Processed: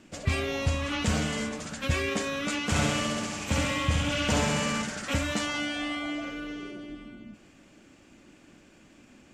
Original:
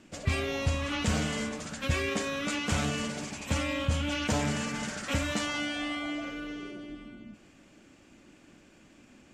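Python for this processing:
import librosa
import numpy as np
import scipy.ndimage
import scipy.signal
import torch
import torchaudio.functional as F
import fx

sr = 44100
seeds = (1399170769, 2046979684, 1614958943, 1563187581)

y = fx.room_flutter(x, sr, wall_m=11.4, rt60_s=1.3, at=(2.74, 4.81), fade=0.02)
y = y * 10.0 ** (1.5 / 20.0)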